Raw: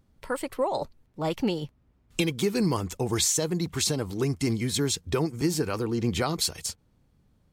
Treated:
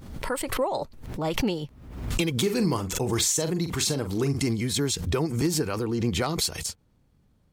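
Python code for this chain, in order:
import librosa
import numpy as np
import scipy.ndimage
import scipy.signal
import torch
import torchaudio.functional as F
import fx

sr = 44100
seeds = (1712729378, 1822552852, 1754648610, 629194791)

y = 10.0 ** (-16.0 / 20.0) * (np.abs((x / 10.0 ** (-16.0 / 20.0) + 3.0) % 4.0 - 2.0) - 1.0)
y = fx.doubler(y, sr, ms=43.0, db=-10.5, at=(2.33, 4.45))
y = fx.pre_swell(y, sr, db_per_s=62.0)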